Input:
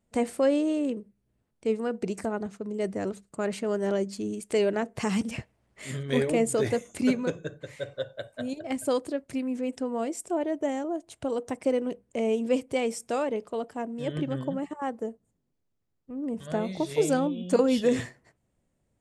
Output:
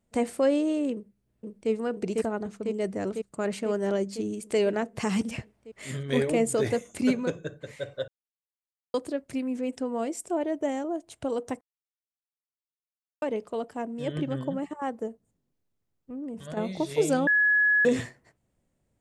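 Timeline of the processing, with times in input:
0.93–1.71 s: echo throw 500 ms, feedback 75%, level -1.5 dB
8.08–8.94 s: mute
11.61–13.22 s: mute
15.07–16.57 s: compression, threshold -33 dBFS
17.27–17.85 s: bleep 1.69 kHz -18.5 dBFS

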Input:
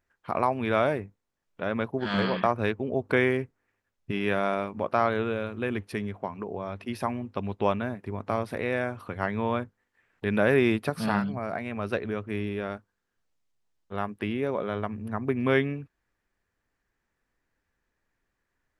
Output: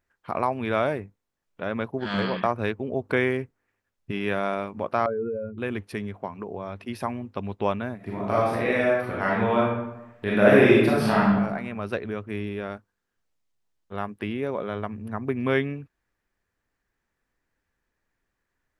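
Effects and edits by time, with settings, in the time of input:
5.06–5.58 s: spectral contrast enhancement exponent 2.7
7.96–11.34 s: reverb throw, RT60 0.95 s, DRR -5.5 dB

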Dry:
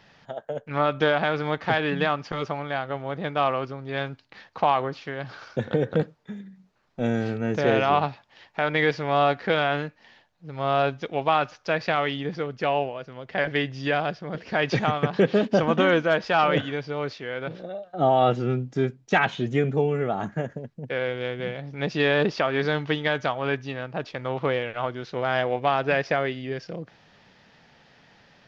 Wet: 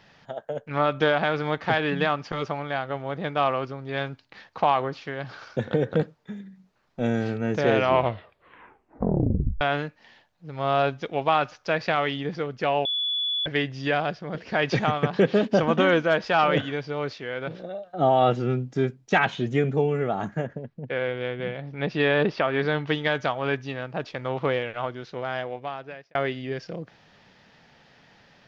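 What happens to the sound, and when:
7.75 s: tape stop 1.86 s
12.85–13.46 s: bleep 3.43 kHz -23.5 dBFS
20.44–22.87 s: low-pass 3.7 kHz
24.57–26.15 s: fade out

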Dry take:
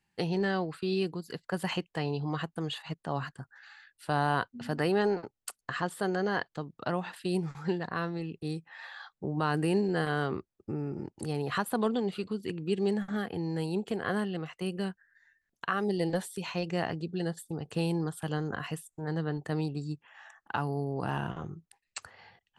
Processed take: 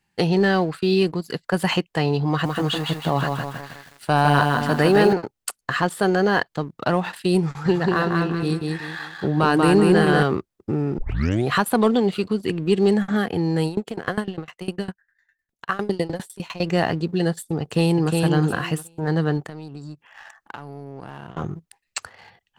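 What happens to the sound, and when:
2.29–5.13 s: bit-crushed delay 159 ms, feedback 55%, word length 9-bit, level -4 dB
7.47–10.23 s: feedback delay 188 ms, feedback 35%, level -3 dB
10.98 s: tape start 0.51 s
13.67–16.61 s: sawtooth tremolo in dB decaying 9.9 Hz, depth 20 dB
17.61–18.16 s: echo throw 360 ms, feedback 20%, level -3 dB
19.46–21.37 s: compression 5:1, threshold -44 dBFS
whole clip: waveshaping leveller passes 1; trim +7.5 dB

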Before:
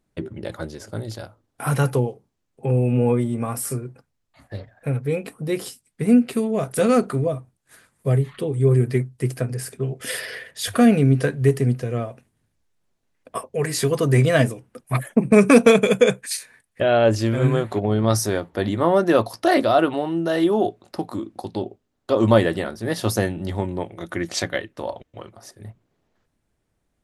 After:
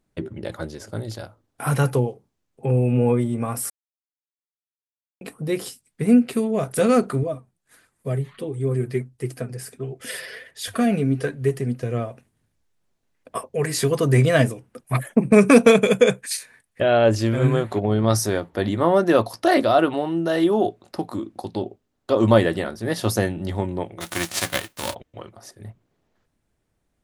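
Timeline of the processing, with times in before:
3.70–5.21 s: mute
7.23–11.83 s: flange 1.5 Hz, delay 2.2 ms, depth 3.8 ms, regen +45%
24.00–24.93 s: formants flattened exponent 0.3

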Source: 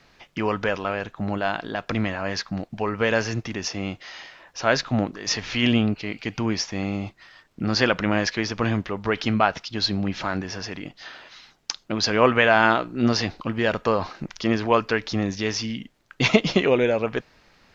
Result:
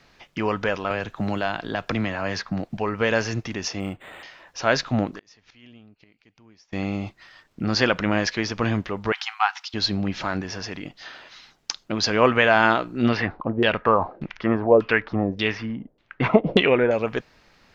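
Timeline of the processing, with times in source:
0.90–2.77 s: three bands compressed up and down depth 70%
3.80–4.23 s: decimation joined by straight lines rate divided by 8×
5.09–6.73 s: inverted gate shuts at -23 dBFS, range -29 dB
9.12–9.74 s: brick-wall FIR high-pass 720 Hz
13.04–16.91 s: LFO low-pass saw down 1.7 Hz 430–3700 Hz

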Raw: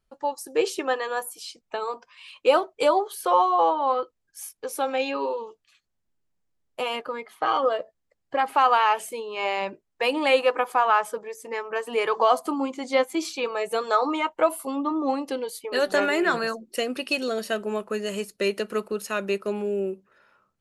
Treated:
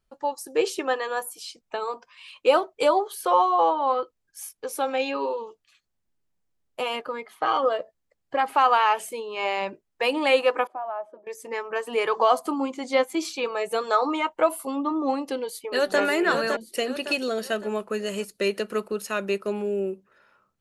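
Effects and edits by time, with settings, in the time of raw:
10.67–11.27 s: two resonant band-passes 460 Hz, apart 0.82 oct
15.38–16.00 s: echo throw 560 ms, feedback 40%, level -5.5 dB

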